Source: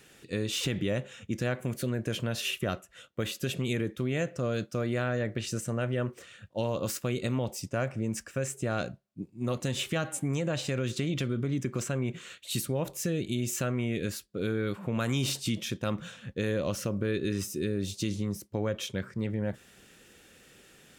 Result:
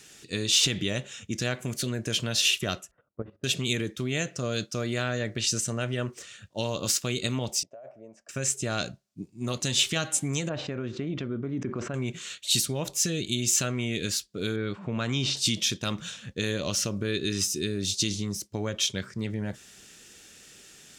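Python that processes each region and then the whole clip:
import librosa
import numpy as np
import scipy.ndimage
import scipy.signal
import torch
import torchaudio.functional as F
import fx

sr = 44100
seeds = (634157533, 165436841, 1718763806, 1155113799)

y = fx.chain(x, sr, fx.lowpass(hz=1100.0, slope=24),
    fx.hum_notches(base_hz=50, count=4),
    fx.level_steps(step_db=15), at=(2.91, 3.44))
y = fx.chain(y, sr, fx.bandpass_q(hz=630.0, q=6.9),
    fx.over_compress(threshold_db=-42.0, ratio=-1.0), at=(7.63, 8.29))
y = fx.chain(y, sr, fx.lowpass(hz=1300.0, slope=12),
    fx.peak_eq(hz=130.0, db=-5.5, octaves=0.63),
    fx.sustainer(db_per_s=87.0), at=(10.49, 11.94))
y = fx.chain(y, sr, fx.lowpass(hz=5800.0, slope=12),
    fx.high_shelf(hz=4100.0, db=-11.5), at=(14.56, 15.37))
y = fx.peak_eq(y, sr, hz=6100.0, db=12.0, octaves=1.6)
y = fx.notch(y, sr, hz=520.0, q=12.0)
y = fx.dynamic_eq(y, sr, hz=3600.0, q=1.3, threshold_db=-44.0, ratio=4.0, max_db=5)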